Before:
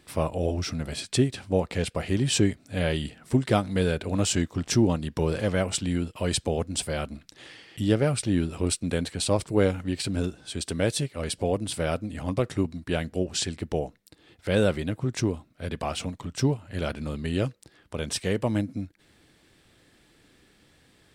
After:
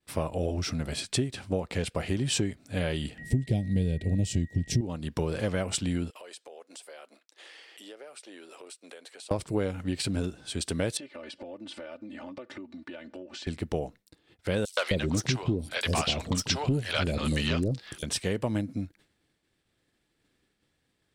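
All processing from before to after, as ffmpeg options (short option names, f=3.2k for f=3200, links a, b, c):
-filter_complex "[0:a]asettb=1/sr,asplit=3[a][b][c];[a]atrim=end=3.184[d];[b]atrim=start=3.18:end=4.81,asetpts=PTS-STARTPTS,afade=t=in:d=0.004:c=qsin,afade=t=out:st=1.626:d=0.004:c=qsin,bass=f=250:g=14,treble=f=4k:g=0,aeval=exprs='val(0)+0.0141*sin(2*PI*1900*n/s)':c=same,asuperstop=centerf=1200:order=4:qfactor=0.84[e];[c]atrim=start=4.806[f];[d][e]acrossfade=d=0.004:c1=hsin:c2=qsin[g];[g][f]acrossfade=d=0.004:c1=qsin:c2=hsin,asettb=1/sr,asplit=3[h][i][j];[h]atrim=end=6.104[k];[i]atrim=start=6.1:end=9.31,asetpts=PTS-STARTPTS,afade=t=in:d=0.004:c=qsin,afade=t=out:st=3.206:d=0.004:c=qsin,highpass=f=420:w=0.5412,highpass=f=420:w=1.3066,acompressor=threshold=-45dB:ratio=5:attack=3.2:release=140:knee=1:detection=peak[l];[j]atrim=start=9.306[m];[k][l]acrossfade=d=0.004:c1=hsin:c2=qsin[n];[n][m]acrossfade=d=0.004:c1=qsin:c2=hsin,asettb=1/sr,asplit=3[o][p][q];[o]atrim=end=10.974[r];[p]atrim=start=10.97:end=13.47,asetpts=PTS-STARTPTS,afade=t=in:d=0.004:c=qsin,afade=t=out:st=2.496:d=0.004:c=qsin,highpass=260,lowpass=3.6k,aecho=1:1:3.4:0.84,atrim=end_sample=110250,acompressor=threshold=-38dB:ratio=10:attack=3.2:release=140:knee=1:detection=peak[s];[q]atrim=start=13.466[t];[r][s]acrossfade=d=0.004:c1=hsin:c2=qsin[u];[u][t]acrossfade=d=0.004:c1=qsin:c2=hsin,asettb=1/sr,asplit=3[v][w][x];[v]atrim=end=14.654[y];[w]atrim=start=14.65:end=18.03,asetpts=PTS-STARTPTS,afade=t=in:d=0.004:c=qsin,afade=t=out:st=3.376:d=0.004:c=qsin,equalizer=f=4.3k:w=0.59:g=8.5,aeval=exprs='0.398*sin(PI/2*1.78*val(0)/0.398)':c=same,acrossover=split=580|5900[z][aa][ab];[aa]adelay=120[ac];[z]adelay=260[ad];[ad][ac][ab]amix=inputs=3:normalize=0,atrim=end_sample=149058[ae];[x]atrim=start=18.026[af];[y][ae]acrossfade=d=0.004:c1=hsin:c2=qsin[ag];[ag][af]acrossfade=d=0.004:c1=qsin:c2=hsin,acompressor=threshold=-24dB:ratio=6,agate=range=-33dB:threshold=-49dB:ratio=3:detection=peak"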